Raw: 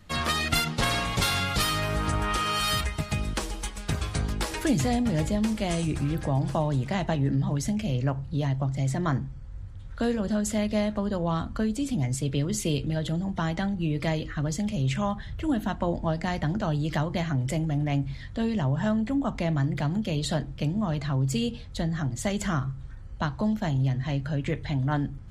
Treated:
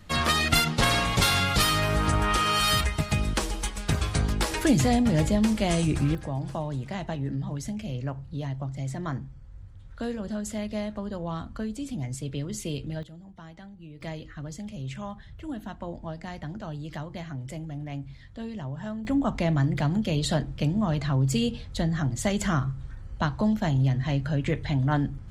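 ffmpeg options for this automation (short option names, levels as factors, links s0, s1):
-af "asetnsamples=n=441:p=0,asendcmd='6.15 volume volume -5.5dB;13.03 volume volume -17.5dB;14.01 volume volume -9dB;19.05 volume volume 2dB',volume=1.41"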